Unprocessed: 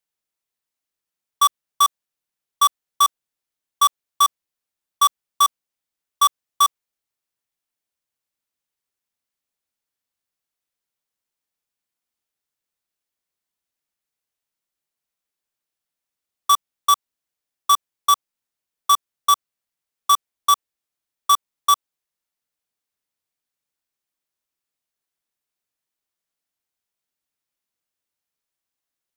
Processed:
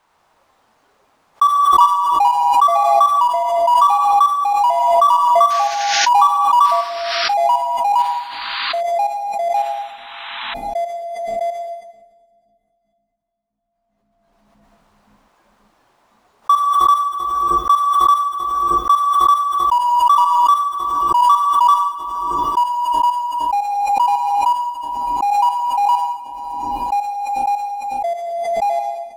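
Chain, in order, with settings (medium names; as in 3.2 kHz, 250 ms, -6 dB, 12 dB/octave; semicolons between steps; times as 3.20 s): median filter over 3 samples; treble shelf 2.6 kHz -11 dB; bucket-brigade echo 310 ms, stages 1024, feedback 60%, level -6.5 dB; on a send at -4 dB: reverberation, pre-delay 52 ms; on the sum: painted sound noise, 5.50–6.09 s, 1.4–6.8 kHz -28 dBFS; peaking EQ 1 kHz +13.5 dB 1.1 oct; ever faster or slower copies 100 ms, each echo -3 st, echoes 3; spectral noise reduction 8 dB; swell ahead of each attack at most 23 dB/s; trim -6.5 dB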